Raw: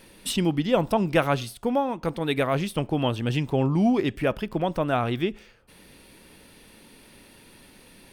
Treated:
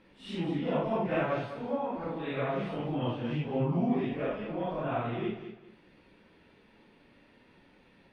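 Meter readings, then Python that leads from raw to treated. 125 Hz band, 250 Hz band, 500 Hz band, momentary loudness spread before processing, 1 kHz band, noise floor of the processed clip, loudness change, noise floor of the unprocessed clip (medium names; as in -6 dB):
-7.5 dB, -7.5 dB, -7.0 dB, 6 LU, -7.0 dB, -62 dBFS, -7.5 dB, -53 dBFS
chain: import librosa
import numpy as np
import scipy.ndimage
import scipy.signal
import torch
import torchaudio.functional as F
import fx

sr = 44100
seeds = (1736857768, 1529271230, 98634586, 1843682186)

y = fx.phase_scramble(x, sr, seeds[0], window_ms=200)
y = scipy.signal.sosfilt(scipy.signal.butter(2, 2500.0, 'lowpass', fs=sr, output='sos'), y)
y = fx.low_shelf(y, sr, hz=80.0, db=-7.0)
y = fx.echo_feedback(y, sr, ms=203, feedback_pct=27, wet_db=-10.5)
y = F.gain(torch.from_numpy(y), -7.0).numpy()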